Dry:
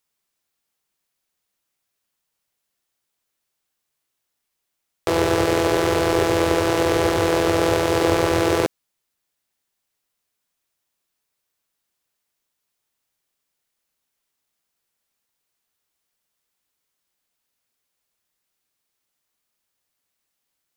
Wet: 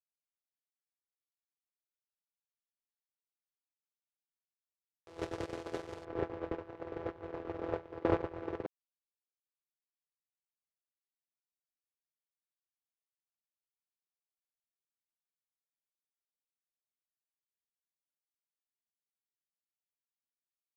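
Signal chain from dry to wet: gate -13 dBFS, range -46 dB; LPF 8200 Hz 12 dB/oct, from 6.05 s 1900 Hz; gain +10.5 dB

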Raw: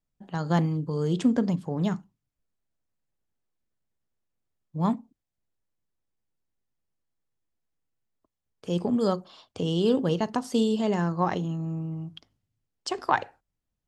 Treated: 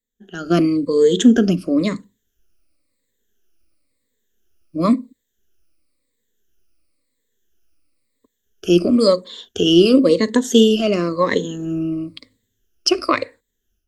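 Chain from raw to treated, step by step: moving spectral ripple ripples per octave 1, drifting -0.97 Hz, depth 17 dB; fixed phaser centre 350 Hz, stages 4; AGC gain up to 13 dB; gain +1 dB

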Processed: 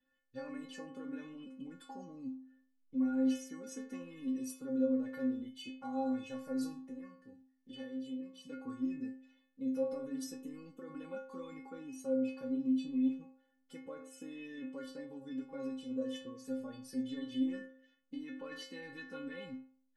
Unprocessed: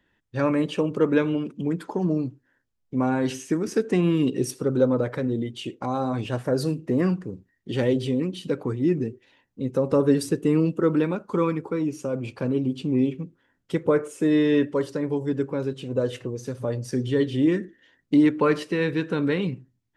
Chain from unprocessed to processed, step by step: 6.82–8.45 compressor 16:1, threshold -32 dBFS, peak gain reduction 15.5 dB; limiter -20.5 dBFS, peak gain reduction 11.5 dB; metallic resonator 260 Hz, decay 0.59 s, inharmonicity 0.008; gain +5 dB

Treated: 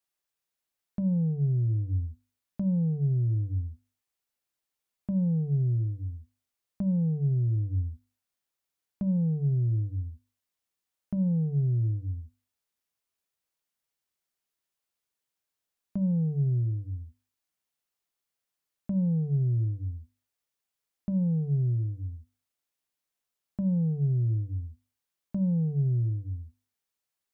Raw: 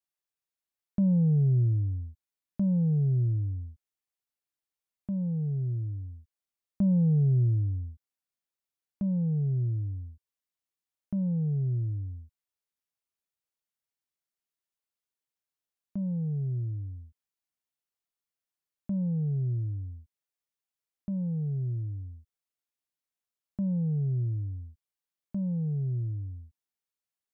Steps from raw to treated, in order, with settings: limiter -27.5 dBFS, peak gain reduction 7.5 dB; notches 50/100/150/200/250/300/350 Hz; gain +5 dB

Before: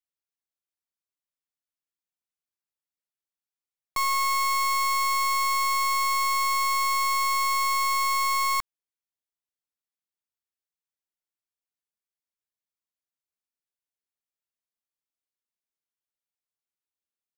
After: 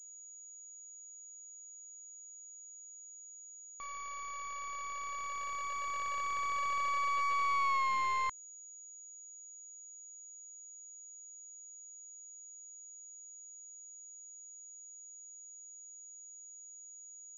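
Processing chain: Doppler pass-by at 7.76, 14 m/s, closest 2.7 m; compressor 6:1, threshold -39 dBFS, peak gain reduction 13 dB; pulse-width modulation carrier 6800 Hz; gain +7.5 dB

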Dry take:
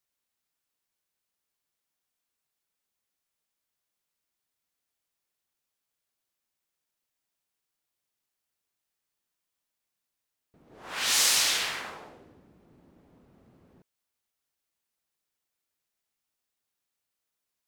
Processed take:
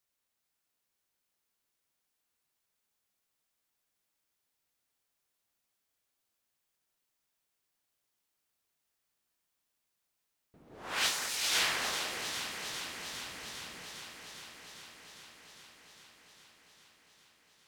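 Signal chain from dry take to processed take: negative-ratio compressor -28 dBFS, ratio -0.5; on a send: echo with dull and thin repeats by turns 0.202 s, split 2100 Hz, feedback 88%, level -6 dB; on the sum: gain -3 dB

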